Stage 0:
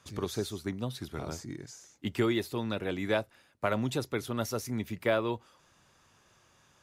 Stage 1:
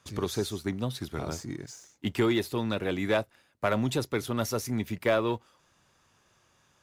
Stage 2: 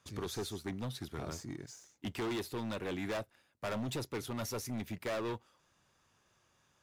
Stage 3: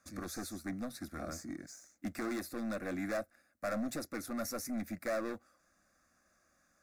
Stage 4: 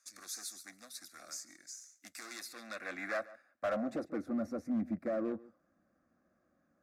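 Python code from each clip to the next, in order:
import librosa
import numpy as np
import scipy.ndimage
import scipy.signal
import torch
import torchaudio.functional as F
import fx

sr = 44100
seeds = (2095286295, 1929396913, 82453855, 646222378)

y1 = fx.leveller(x, sr, passes=1)
y2 = np.clip(y1, -10.0 ** (-28.0 / 20.0), 10.0 ** (-28.0 / 20.0))
y2 = y2 * 10.0 ** (-6.0 / 20.0)
y3 = fx.fixed_phaser(y2, sr, hz=620.0, stages=8)
y3 = y3 * 10.0 ** (3.0 / 20.0)
y4 = y3 + 10.0 ** (-20.0 / 20.0) * np.pad(y3, (int(142 * sr / 1000.0), 0))[:len(y3)]
y4 = fx.filter_sweep_bandpass(y4, sr, from_hz=6700.0, to_hz=260.0, start_s=2.22, end_s=4.38, q=0.76)
y4 = np.clip(10.0 ** (33.0 / 20.0) * y4, -1.0, 1.0) / 10.0 ** (33.0 / 20.0)
y4 = y4 * 10.0 ** (5.0 / 20.0)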